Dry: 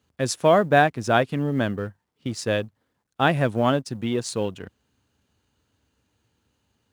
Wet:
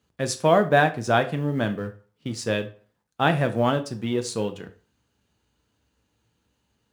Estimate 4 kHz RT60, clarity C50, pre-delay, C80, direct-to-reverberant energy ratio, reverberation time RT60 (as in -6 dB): 0.30 s, 15.0 dB, 4 ms, 20.0 dB, 7.0 dB, 0.40 s